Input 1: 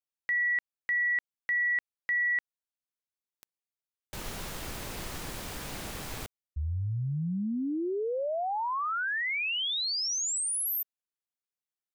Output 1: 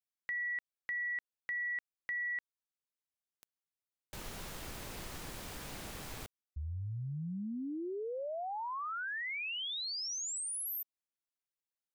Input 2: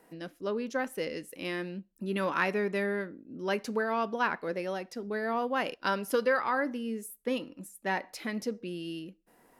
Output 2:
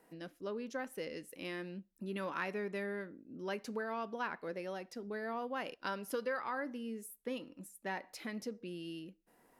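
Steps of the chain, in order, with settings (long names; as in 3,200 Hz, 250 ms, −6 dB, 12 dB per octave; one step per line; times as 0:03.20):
downward compressor 1.5 to 1, threshold −36 dBFS
level −5.5 dB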